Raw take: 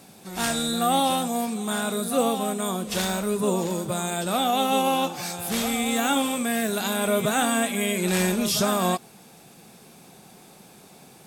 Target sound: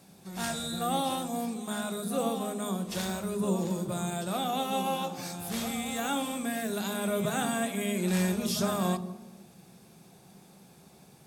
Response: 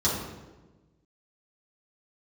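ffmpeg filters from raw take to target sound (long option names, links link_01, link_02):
-filter_complex "[0:a]asplit=2[link_01][link_02];[1:a]atrim=start_sample=2205,lowshelf=frequency=350:gain=11[link_03];[link_02][link_03]afir=irnorm=-1:irlink=0,volume=-24dB[link_04];[link_01][link_04]amix=inputs=2:normalize=0,volume=-9dB"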